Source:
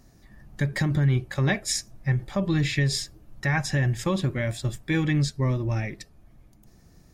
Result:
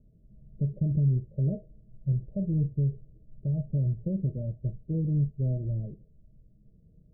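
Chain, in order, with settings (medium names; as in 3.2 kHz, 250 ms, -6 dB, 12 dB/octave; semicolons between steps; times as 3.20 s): rippled Chebyshev low-pass 650 Hz, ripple 9 dB; bass shelf 100 Hz +10.5 dB; trim -4 dB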